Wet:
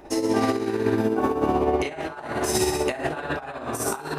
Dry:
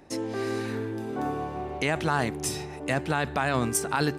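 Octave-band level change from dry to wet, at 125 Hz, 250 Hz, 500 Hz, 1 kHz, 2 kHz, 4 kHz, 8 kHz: −2.0, +5.5, +6.5, +2.5, −1.5, +2.0, +2.0 decibels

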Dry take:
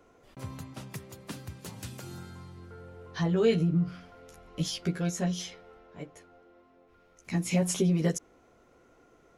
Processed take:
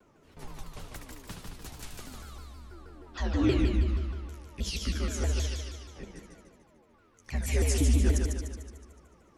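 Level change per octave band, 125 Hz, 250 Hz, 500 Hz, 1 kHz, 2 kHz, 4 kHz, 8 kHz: +1.0, −3.0, −5.0, −1.5, +1.0, +0.5, 0.0 decibels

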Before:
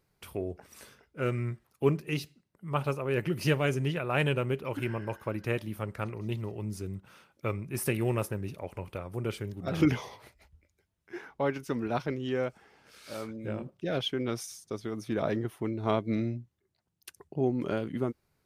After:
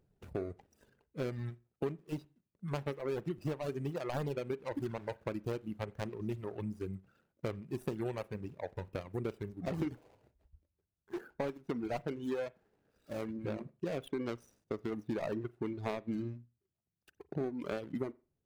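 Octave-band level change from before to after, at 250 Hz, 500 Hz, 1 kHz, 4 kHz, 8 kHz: −6.5, −6.0, −8.0, −13.5, −15.5 decibels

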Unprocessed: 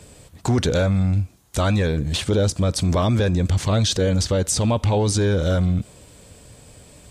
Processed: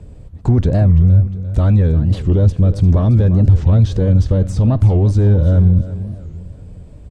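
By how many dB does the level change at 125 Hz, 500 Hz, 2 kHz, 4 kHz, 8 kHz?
+9.5 dB, −0.5 dB, can't be measured, below −10 dB, below −15 dB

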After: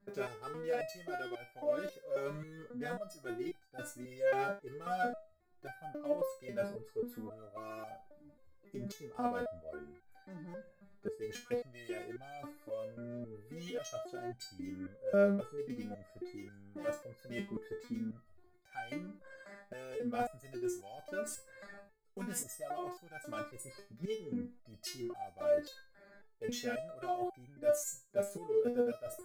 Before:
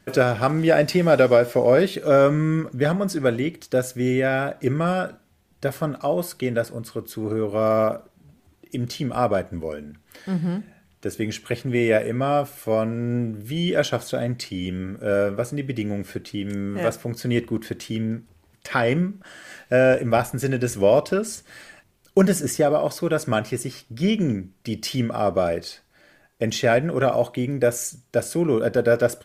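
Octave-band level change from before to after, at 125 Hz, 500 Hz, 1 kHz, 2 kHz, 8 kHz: −25.0, −16.5, −14.5, −18.0, −13.5 decibels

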